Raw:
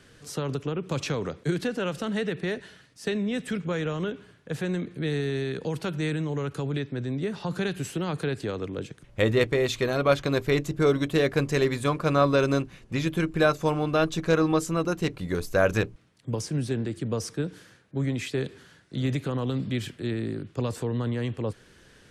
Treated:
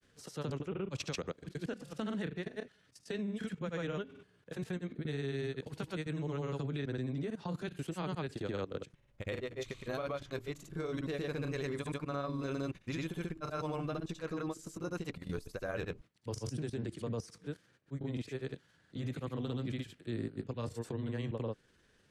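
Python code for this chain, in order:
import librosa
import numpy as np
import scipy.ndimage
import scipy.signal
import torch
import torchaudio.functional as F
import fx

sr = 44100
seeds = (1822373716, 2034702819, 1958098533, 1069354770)

y = fx.level_steps(x, sr, step_db=16)
y = fx.granulator(y, sr, seeds[0], grain_ms=100.0, per_s=20.0, spray_ms=100.0, spread_st=0)
y = y * 10.0 ** (-3.5 / 20.0)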